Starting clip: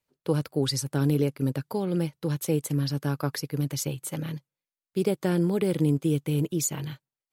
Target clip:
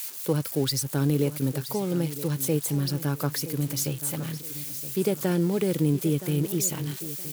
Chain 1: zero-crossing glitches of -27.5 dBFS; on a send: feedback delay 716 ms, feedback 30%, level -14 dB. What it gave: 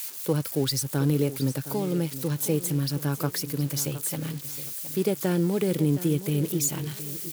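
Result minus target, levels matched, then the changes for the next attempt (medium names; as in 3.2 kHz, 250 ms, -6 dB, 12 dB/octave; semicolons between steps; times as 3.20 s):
echo 254 ms early
change: feedback delay 970 ms, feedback 30%, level -14 dB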